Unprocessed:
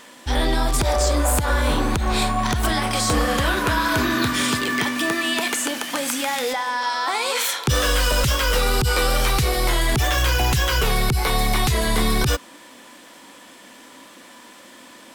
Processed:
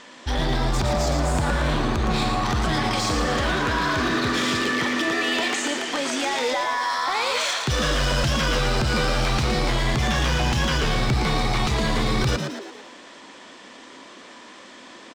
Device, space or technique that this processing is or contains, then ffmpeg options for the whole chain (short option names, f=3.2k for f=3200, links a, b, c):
limiter into clipper: -filter_complex "[0:a]lowpass=f=6.8k:w=0.5412,lowpass=f=6.8k:w=1.3066,alimiter=limit=-15dB:level=0:latency=1:release=25,asoftclip=type=hard:threshold=-19dB,asplit=7[a][b][c][d][e][f][g];[b]adelay=114,afreqshift=90,volume=-6dB[h];[c]adelay=228,afreqshift=180,volume=-12dB[i];[d]adelay=342,afreqshift=270,volume=-18dB[j];[e]adelay=456,afreqshift=360,volume=-24.1dB[k];[f]adelay=570,afreqshift=450,volume=-30.1dB[l];[g]adelay=684,afreqshift=540,volume=-36.1dB[m];[a][h][i][j][k][l][m]amix=inputs=7:normalize=0"